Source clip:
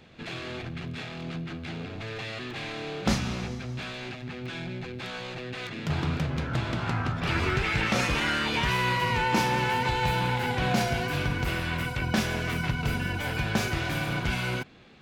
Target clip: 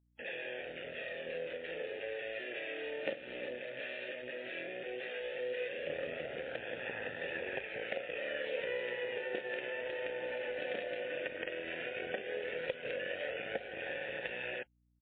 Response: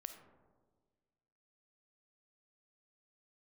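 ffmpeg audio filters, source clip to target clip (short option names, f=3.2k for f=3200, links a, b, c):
-filter_complex "[0:a]acrossover=split=470|950[a][b][c];[c]alimiter=level_in=1dB:limit=-24dB:level=0:latency=1:release=213,volume=-1dB[d];[a][b][d]amix=inputs=3:normalize=0,asplit=2[e][f];[f]adelay=110,highpass=300,lowpass=3.4k,asoftclip=type=hard:threshold=-20.5dB,volume=-24dB[g];[e][g]amix=inputs=2:normalize=0,adynamicequalizer=threshold=0.00282:dfrequency=430:dqfactor=4.6:tfrequency=430:tqfactor=4.6:attack=5:release=100:ratio=0.375:range=3:mode=boostabove:tftype=bell,aresample=11025,acrusher=bits=4:dc=4:mix=0:aa=0.000001,aresample=44100,asplit=3[h][i][j];[h]bandpass=f=530:t=q:w=8,volume=0dB[k];[i]bandpass=f=1.84k:t=q:w=8,volume=-6dB[l];[j]bandpass=f=2.48k:t=q:w=8,volume=-9dB[m];[k][l][m]amix=inputs=3:normalize=0,acompressor=threshold=-47dB:ratio=4,aeval=exprs='val(0)+0.0001*(sin(2*PI*60*n/s)+sin(2*PI*2*60*n/s)/2+sin(2*PI*3*60*n/s)/3+sin(2*PI*4*60*n/s)/4+sin(2*PI*5*60*n/s)/5)':c=same,flanger=delay=1.1:depth=2.3:regen=56:speed=0.14:shape=sinusoidal,lowshelf=f=120:g=-8.5,volume=16dB" -ar 8000 -c:a libmp3lame -b:a 16k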